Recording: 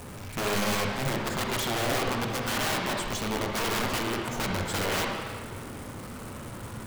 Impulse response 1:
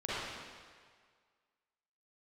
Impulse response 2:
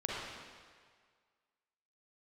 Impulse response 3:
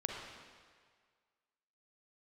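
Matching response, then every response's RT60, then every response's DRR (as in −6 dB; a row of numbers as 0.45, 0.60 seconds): 3; 1.8, 1.8, 1.8 seconds; −10.5, −5.0, 0.0 decibels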